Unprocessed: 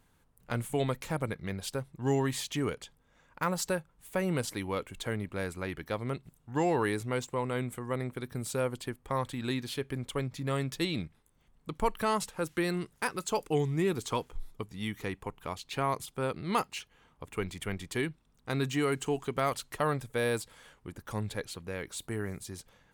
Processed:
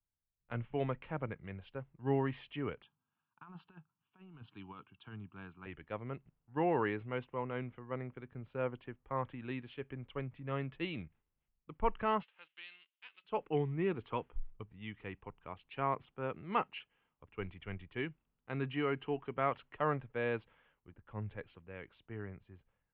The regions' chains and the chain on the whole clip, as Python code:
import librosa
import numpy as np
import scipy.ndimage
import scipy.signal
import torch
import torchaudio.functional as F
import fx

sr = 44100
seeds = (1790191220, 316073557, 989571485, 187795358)

y = fx.chain(x, sr, fx.highpass(hz=110.0, slope=24),
    fx.over_compress(threshold_db=-33.0, ratio=-0.5),
    fx.fixed_phaser(hz=2000.0, stages=6), at=(2.82, 5.66))
y = fx.envelope_flatten(y, sr, power=0.6, at=(12.21, 13.23), fade=0.02)
y = fx.bandpass_q(y, sr, hz=3700.0, q=1.7, at=(12.21, 13.23), fade=0.02)
y = scipy.signal.sosfilt(scipy.signal.ellip(4, 1.0, 60, 2900.0, 'lowpass', fs=sr, output='sos'), y)
y = fx.band_widen(y, sr, depth_pct=70)
y = y * 10.0 ** (-6.0 / 20.0)